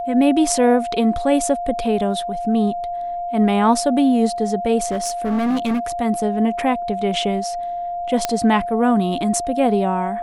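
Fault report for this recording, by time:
whistle 700 Hz −23 dBFS
0:04.91–0:05.80: clipping −16.5 dBFS
0:08.25: click −4 dBFS

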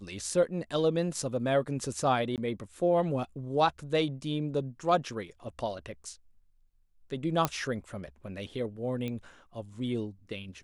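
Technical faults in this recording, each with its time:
0:02.36–0:02.38: drop-out 18 ms
0:07.45: click −11 dBFS
0:09.08: click −23 dBFS

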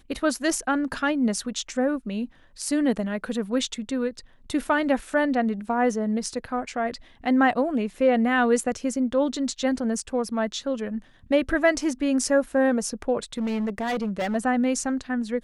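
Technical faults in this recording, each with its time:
0:13.38–0:14.36: clipping −23 dBFS

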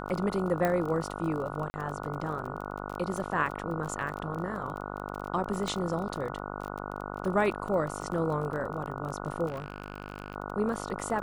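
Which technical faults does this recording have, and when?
mains buzz 50 Hz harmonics 29 −38 dBFS
surface crackle 28 per second −35 dBFS
0:00.65: click −15 dBFS
0:01.70–0:01.74: drop-out 40 ms
0:05.68: click
0:09.47–0:10.36: clipping −30.5 dBFS

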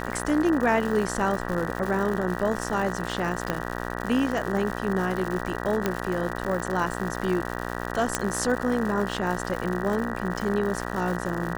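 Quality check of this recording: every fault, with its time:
mains buzz 60 Hz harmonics 32 −32 dBFS
surface crackle 190 per second −30 dBFS
0:03.50: click −12 dBFS
0:05.86: click −10 dBFS
0:08.15: click −7 dBFS

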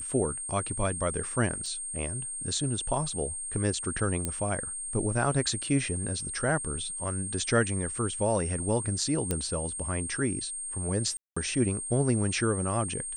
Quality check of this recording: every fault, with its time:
whistle 8,600 Hz −34 dBFS
0:01.66: drop-out 2.2 ms
0:04.25: click −15 dBFS
0:09.31: click −13 dBFS
0:11.17–0:11.37: drop-out 195 ms

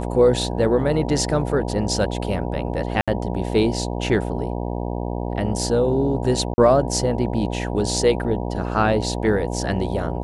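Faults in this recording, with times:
mains buzz 60 Hz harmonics 16 −26 dBFS
0:03.01–0:03.08: drop-out 66 ms
0:06.54–0:06.58: drop-out 40 ms

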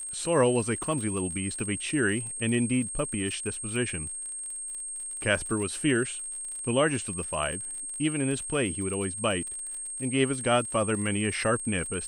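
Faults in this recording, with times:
surface crackle 50 per second −36 dBFS
whistle 8,500 Hz −34 dBFS

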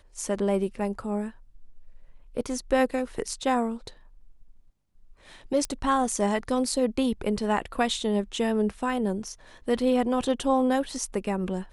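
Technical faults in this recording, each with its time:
0:05.65: click −16 dBFS

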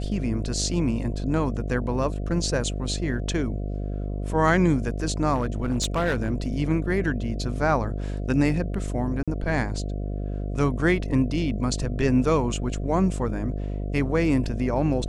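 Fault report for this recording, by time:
mains buzz 50 Hz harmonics 14 −29 dBFS
0:05.34–0:06.46: clipping −19 dBFS
0:09.23–0:09.28: drop-out 46 ms

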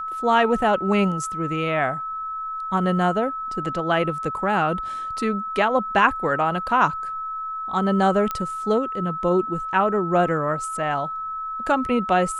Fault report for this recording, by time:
whistle 1,300 Hz −27 dBFS
0:08.31: click −12 dBFS

